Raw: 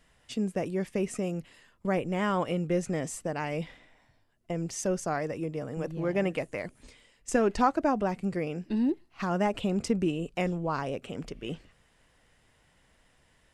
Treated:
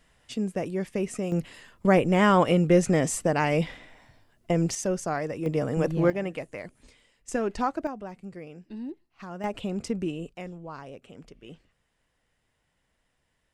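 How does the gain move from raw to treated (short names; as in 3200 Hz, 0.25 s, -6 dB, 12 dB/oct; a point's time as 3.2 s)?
+1 dB
from 1.32 s +8.5 dB
from 4.75 s +1.5 dB
from 5.46 s +8.5 dB
from 6.1 s -3 dB
from 7.87 s -10 dB
from 9.44 s -2.5 dB
from 10.33 s -9.5 dB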